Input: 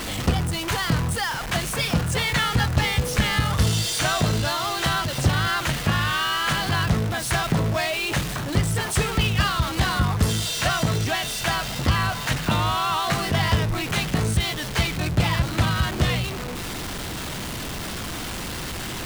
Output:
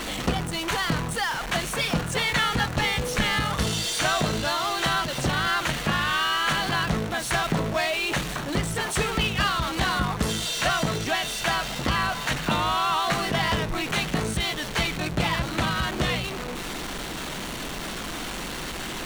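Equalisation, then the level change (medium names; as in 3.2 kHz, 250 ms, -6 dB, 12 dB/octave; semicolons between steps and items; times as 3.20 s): peaking EQ 93 Hz -14 dB 0.9 oct; treble shelf 9.6 kHz -7 dB; band-stop 5 kHz, Q 15; 0.0 dB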